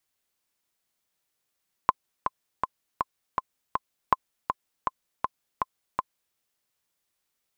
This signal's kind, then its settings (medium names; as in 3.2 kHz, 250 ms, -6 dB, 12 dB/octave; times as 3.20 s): metronome 161 bpm, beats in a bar 6, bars 2, 1.04 kHz, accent 6.5 dB -5 dBFS